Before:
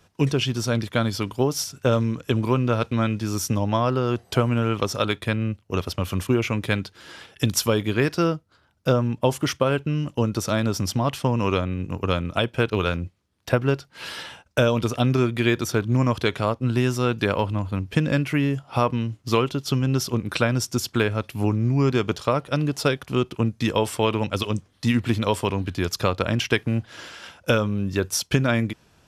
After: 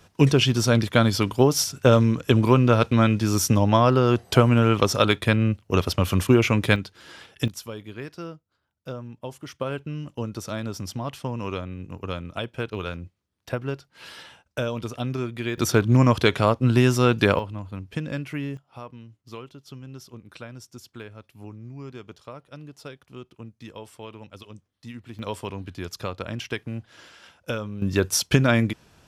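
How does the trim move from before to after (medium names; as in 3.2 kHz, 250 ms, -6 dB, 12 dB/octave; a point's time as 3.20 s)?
+4 dB
from 6.76 s -2.5 dB
from 7.48 s -15 dB
from 9.59 s -8 dB
from 15.58 s +3.5 dB
from 17.39 s -8.5 dB
from 18.57 s -18.5 dB
from 25.19 s -9 dB
from 27.82 s +2 dB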